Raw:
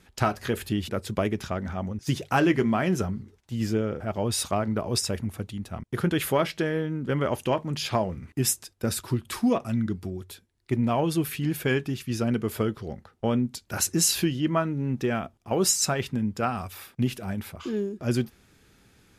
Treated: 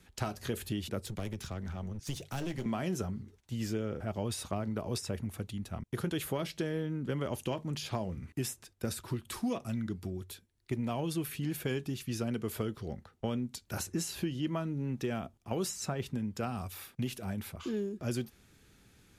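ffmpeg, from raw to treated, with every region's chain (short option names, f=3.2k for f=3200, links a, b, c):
-filter_complex "[0:a]asettb=1/sr,asplit=3[a][b][c];[a]atrim=end=1.064[d];[b]atrim=start=1.06:end=2.66,asetpts=PTS-STARTPTS,afade=t=in:d=0.004:c=qsin,afade=t=out:st=1.596:d=0.004:c=qsin,acrossover=split=160|3000[e][f][g];[f]acompressor=threshold=-46dB:ratio=1.5:attack=3.2:release=140:knee=2.83:detection=peak[h];[e][h][g]amix=inputs=3:normalize=0,aeval=exprs='clip(val(0),-1,0.0168)':c=same[i];[c]atrim=start=2.656[j];[d][i]acrossfade=d=0.004:c1=hsin:c2=qsin[k];[k][j]acrossfade=d=0.004:c1=qsin:c2=hsin,equalizer=f=830:w=0.36:g=-3.5,bandreject=f=5k:w=26,acrossover=split=380|1200|3000[l][m][n][o];[l]acompressor=threshold=-32dB:ratio=4[p];[m]acompressor=threshold=-35dB:ratio=4[q];[n]acompressor=threshold=-50dB:ratio=4[r];[o]acompressor=threshold=-39dB:ratio=4[s];[p][q][r][s]amix=inputs=4:normalize=0,volume=-2dB"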